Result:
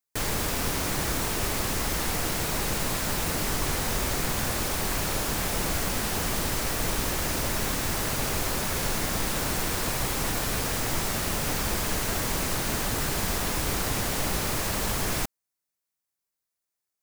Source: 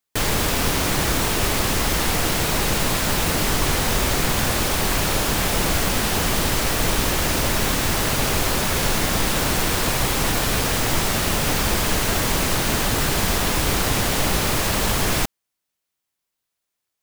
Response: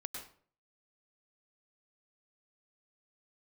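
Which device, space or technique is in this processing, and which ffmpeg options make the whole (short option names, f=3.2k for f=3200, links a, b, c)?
exciter from parts: -filter_complex "[0:a]asplit=2[a][b];[b]highpass=f=2.9k:w=0.5412,highpass=f=2.9k:w=1.3066,asoftclip=type=tanh:threshold=-29dB,volume=-5dB[c];[a][c]amix=inputs=2:normalize=0,volume=-7.5dB"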